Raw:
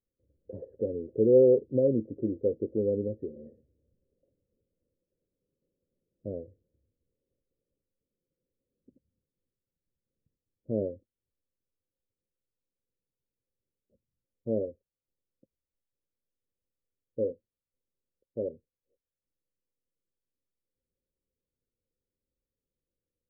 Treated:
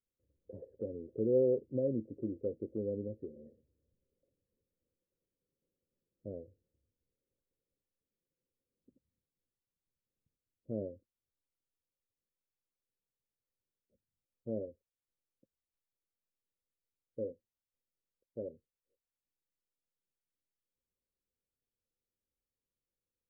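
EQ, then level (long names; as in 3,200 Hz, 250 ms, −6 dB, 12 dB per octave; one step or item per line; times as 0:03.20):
dynamic equaliser 440 Hz, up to −4 dB, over −36 dBFS, Q 3.1
−7.0 dB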